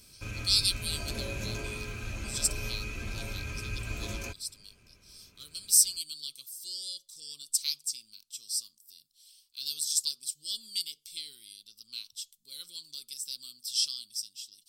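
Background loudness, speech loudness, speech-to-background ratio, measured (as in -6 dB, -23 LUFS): -38.0 LUFS, -31.0 LUFS, 7.0 dB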